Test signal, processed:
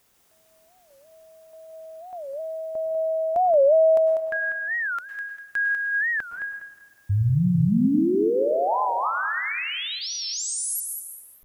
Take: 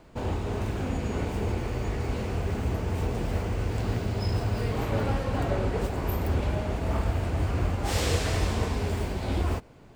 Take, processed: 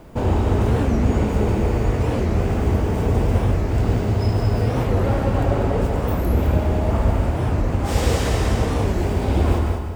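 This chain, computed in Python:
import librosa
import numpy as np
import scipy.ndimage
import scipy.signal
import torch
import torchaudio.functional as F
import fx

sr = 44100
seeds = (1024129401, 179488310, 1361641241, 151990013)

y = fx.quant_dither(x, sr, seeds[0], bits=12, dither='triangular')
y = fx.high_shelf(y, sr, hz=6400.0, db=4.0)
y = fx.echo_feedback(y, sr, ms=196, feedback_pct=27, wet_db=-7.0)
y = fx.rev_plate(y, sr, seeds[1], rt60_s=0.94, hf_ratio=0.9, predelay_ms=90, drr_db=5.0)
y = fx.rider(y, sr, range_db=5, speed_s=2.0)
y = fx.tilt_shelf(y, sr, db=4.0, hz=1400.0)
y = fx.notch(y, sr, hz=4200.0, q=21.0)
y = fx.record_warp(y, sr, rpm=45.0, depth_cents=250.0)
y = y * 10.0 ** (3.5 / 20.0)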